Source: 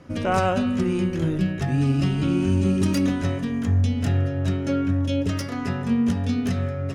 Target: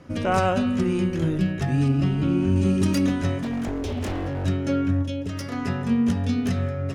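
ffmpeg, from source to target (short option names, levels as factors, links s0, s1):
-filter_complex "[0:a]asettb=1/sr,asplit=3[s0][s1][s2];[s0]atrim=end=1.884[s3];[s1]atrim=start=1.88:end=2.56,asetpts=PTS-STARTPTS,afade=t=in:d=0.004:c=qsin,afade=t=out:st=0.676:d=0.004:c=qsin,highshelf=f=3100:g=-10[s4];[s2]atrim=start=2.556[s5];[s3][s4]acrossfade=d=0.004:c1=hsin:c2=qsin[s6];[s6][s5]acrossfade=d=0.004:c1=qsin:c2=hsin,asettb=1/sr,asplit=3[s7][s8][s9];[s7]atrim=end=3.404[s10];[s8]atrim=start=3.4:end=4.45,asetpts=PTS-STARTPTS,afade=t=in:d=0.004:c=qsin,afade=t=out:st=1.046:d=0.004:c=qsin,aeval=exprs='0.075*(abs(mod(val(0)/0.075+3,4)-2)-1)':c=same[s11];[s9]atrim=start=4.446[s12];[s10][s11]acrossfade=d=0.004:c1=hsin:c2=qsin[s13];[s13][s12]acrossfade=d=0.004:c1=qsin:c2=hsin,asettb=1/sr,asplit=3[s14][s15][s16];[s14]atrim=end=5.024[s17];[s15]atrim=start=5.02:end=5.53,asetpts=PTS-STARTPTS,afade=t=in:d=0.004:c=qsin,afade=t=out:st=0.506:d=0.004:c=qsin,acompressor=threshold=0.0501:ratio=6[s18];[s16]atrim=start=5.526[s19];[s17][s18]acrossfade=d=0.004:c1=hsin:c2=qsin[s20];[s20][s19]acrossfade=d=0.004:c1=qsin:c2=hsin"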